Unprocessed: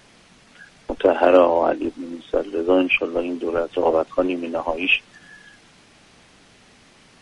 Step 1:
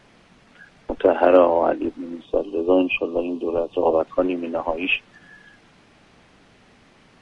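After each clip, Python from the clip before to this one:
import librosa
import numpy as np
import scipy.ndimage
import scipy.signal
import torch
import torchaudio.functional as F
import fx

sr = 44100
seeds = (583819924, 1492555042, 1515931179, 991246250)

y = fx.spec_box(x, sr, start_s=2.25, length_s=1.75, low_hz=1200.0, high_hz=2400.0, gain_db=-15)
y = fx.high_shelf(y, sr, hz=3900.0, db=-12.0)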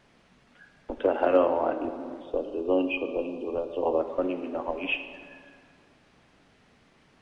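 y = fx.rev_plate(x, sr, seeds[0], rt60_s=2.2, hf_ratio=0.6, predelay_ms=0, drr_db=8.0)
y = F.gain(torch.from_numpy(y), -8.0).numpy()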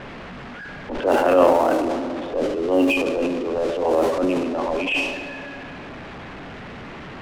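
y = x + 0.5 * 10.0 ** (-36.5 / 20.0) * np.sign(x)
y = fx.transient(y, sr, attack_db=-8, sustain_db=8)
y = fx.env_lowpass(y, sr, base_hz=2000.0, full_db=-20.5)
y = F.gain(torch.from_numpy(y), 6.5).numpy()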